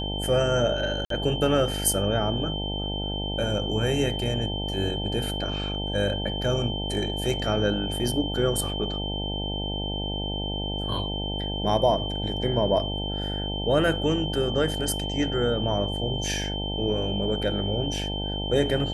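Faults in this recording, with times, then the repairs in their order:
buzz 50 Hz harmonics 18 -31 dBFS
tone 3100 Hz -32 dBFS
1.05–1.1 gap 53 ms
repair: notch 3100 Hz, Q 30; de-hum 50 Hz, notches 18; interpolate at 1.05, 53 ms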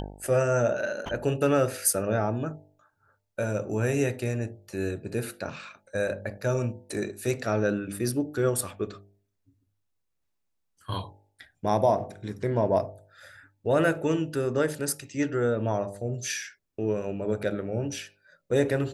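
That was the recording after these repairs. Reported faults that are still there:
none

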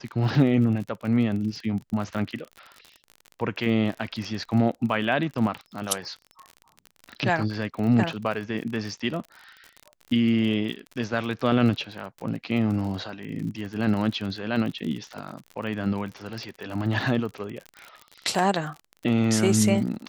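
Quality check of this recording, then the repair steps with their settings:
crackle 43/s -32 dBFS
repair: de-click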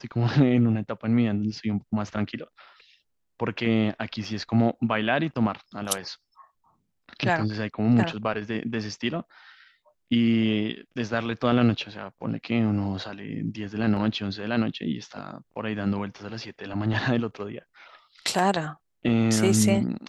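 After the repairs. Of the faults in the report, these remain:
none

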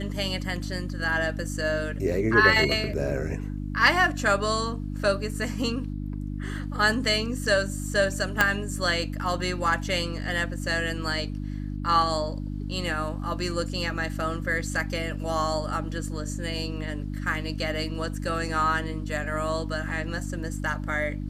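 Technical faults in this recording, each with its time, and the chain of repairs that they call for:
hum 50 Hz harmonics 6 -32 dBFS
8.41 pop -5 dBFS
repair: de-click; de-hum 50 Hz, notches 6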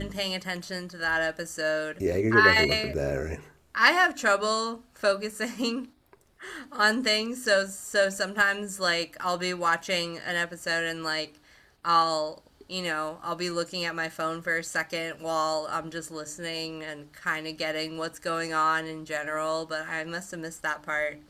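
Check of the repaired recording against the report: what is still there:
8.41 pop

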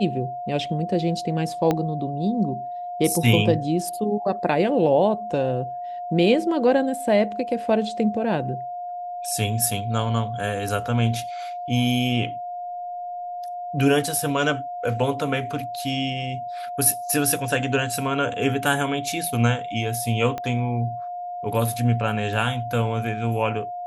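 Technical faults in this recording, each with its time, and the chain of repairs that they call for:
tone 710 Hz -29 dBFS
1.71 pop -9 dBFS
20.38 pop -16 dBFS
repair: de-click; notch 710 Hz, Q 30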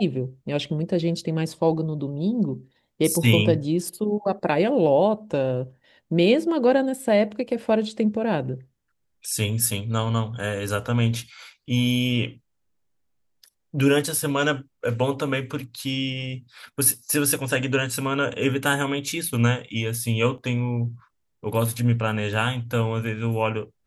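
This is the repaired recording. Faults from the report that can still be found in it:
1.71 pop
20.38 pop

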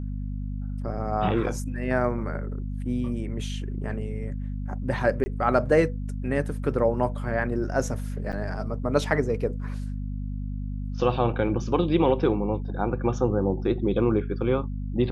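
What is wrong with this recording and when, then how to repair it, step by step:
hum 50 Hz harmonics 5 -31 dBFS
5.24–5.26 gap 20 ms
8.32–8.33 gap 8.2 ms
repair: de-hum 50 Hz, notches 5; interpolate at 5.24, 20 ms; interpolate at 8.32, 8.2 ms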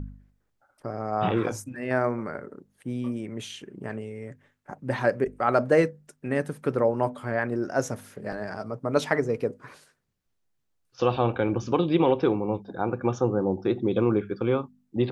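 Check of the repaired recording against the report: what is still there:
none

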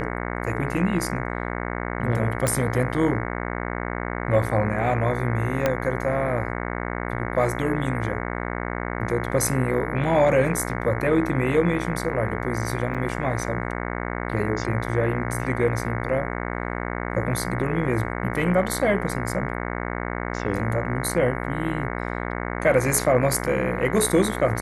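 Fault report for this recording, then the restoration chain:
buzz 60 Hz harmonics 37 -29 dBFS
2.47 pop -9 dBFS
5.66 pop -7 dBFS
12.94–12.95 gap 6.8 ms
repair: de-click; de-hum 60 Hz, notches 37; interpolate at 12.94, 6.8 ms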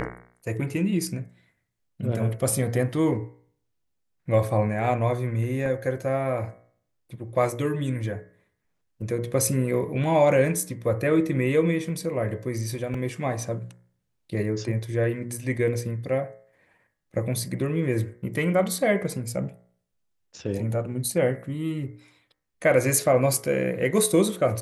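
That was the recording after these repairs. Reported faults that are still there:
5.66 pop

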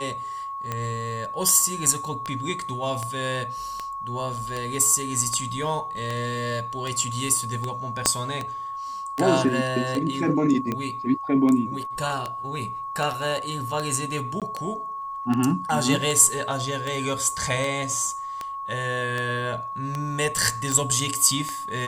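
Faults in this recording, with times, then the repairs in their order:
tick 78 rpm -14 dBFS
tone 1100 Hz -30 dBFS
8.06 pop -3 dBFS
14.4–14.42 gap 17 ms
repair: de-click; notch 1100 Hz, Q 30; interpolate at 14.4, 17 ms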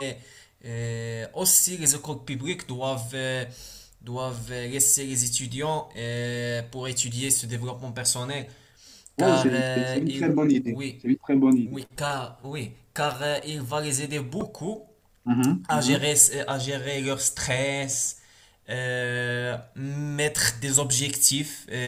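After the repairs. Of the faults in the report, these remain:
8.06 pop

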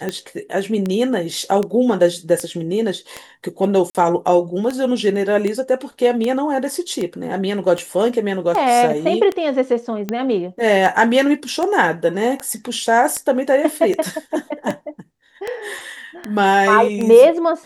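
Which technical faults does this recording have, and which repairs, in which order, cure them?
tick 78 rpm -10 dBFS
3.9–3.95 gap 48 ms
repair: de-click; interpolate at 3.9, 48 ms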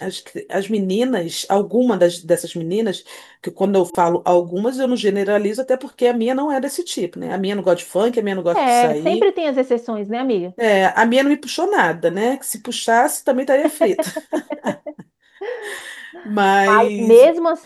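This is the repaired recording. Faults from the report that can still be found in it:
none

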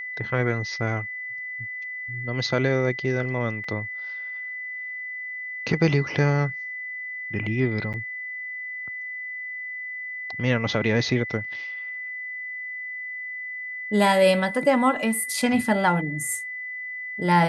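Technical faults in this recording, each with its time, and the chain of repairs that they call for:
tone 2000 Hz -31 dBFS
3.64 gap 3.3 ms
7.93–7.94 gap 8.2 ms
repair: notch 2000 Hz, Q 30; interpolate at 3.64, 3.3 ms; interpolate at 7.93, 8.2 ms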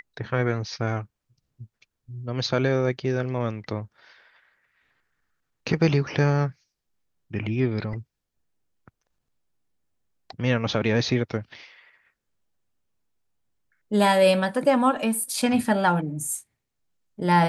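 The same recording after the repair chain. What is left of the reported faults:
none

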